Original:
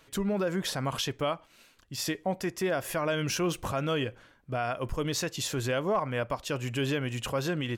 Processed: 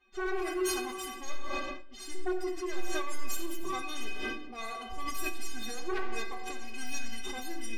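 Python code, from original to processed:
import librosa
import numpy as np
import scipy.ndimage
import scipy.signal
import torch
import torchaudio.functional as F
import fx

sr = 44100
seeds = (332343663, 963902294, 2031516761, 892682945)

p1 = fx.tracing_dist(x, sr, depth_ms=0.41)
p2 = fx.env_lowpass(p1, sr, base_hz=2300.0, full_db=-25.5)
p3 = fx.high_shelf(p2, sr, hz=2800.0, db=4.5)
p4 = fx.pitch_keep_formants(p3, sr, semitones=11.0)
p5 = fx.stiff_resonator(p4, sr, f0_hz=370.0, decay_s=0.3, stiffness=0.008)
p6 = fx.fold_sine(p5, sr, drive_db=10, ceiling_db=-26.5)
p7 = p6 + fx.echo_single(p6, sr, ms=92, db=-16.0, dry=0)
p8 = fx.room_shoebox(p7, sr, seeds[0], volume_m3=1700.0, walls='mixed', distance_m=1.4)
p9 = fx.sustainer(p8, sr, db_per_s=38.0)
y = p9 * librosa.db_to_amplitude(-5.0)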